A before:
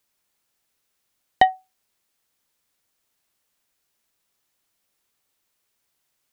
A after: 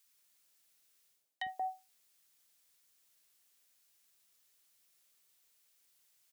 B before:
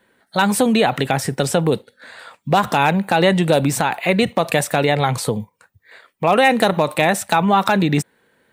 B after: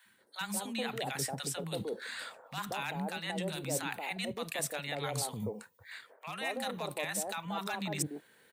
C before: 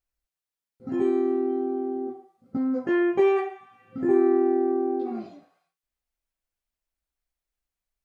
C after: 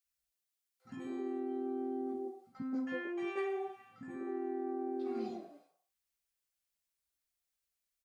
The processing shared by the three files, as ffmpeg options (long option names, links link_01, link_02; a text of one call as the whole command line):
ffmpeg -i in.wav -filter_complex "[0:a]highpass=frequency=130:poles=1,highshelf=frequency=2900:gain=8,areverse,acompressor=threshold=-28dB:ratio=8,areverse,acrossover=split=280|880[link_01][link_02][link_03];[link_01]adelay=50[link_04];[link_02]adelay=180[link_05];[link_04][link_05][link_03]amix=inputs=3:normalize=0,volume=-4dB" out.wav